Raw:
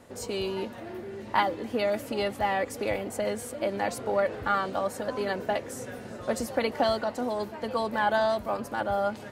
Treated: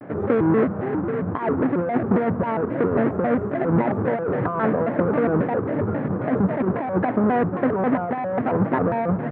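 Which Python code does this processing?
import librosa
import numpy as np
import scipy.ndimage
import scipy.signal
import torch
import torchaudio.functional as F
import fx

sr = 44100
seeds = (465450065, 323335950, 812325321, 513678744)

y = fx.halfwave_hold(x, sr)
y = fx.over_compress(y, sr, threshold_db=-27.0, ratio=-1.0)
y = scipy.signal.sosfilt(scipy.signal.ellip(3, 1.0, 50, [120.0, 1600.0], 'bandpass', fs=sr, output='sos'), y)
y = fx.low_shelf(y, sr, hz=310.0, db=10.0)
y = fx.vibrato_shape(y, sr, shape='square', rate_hz=3.7, depth_cents=250.0)
y = y * librosa.db_to_amplitude(4.0)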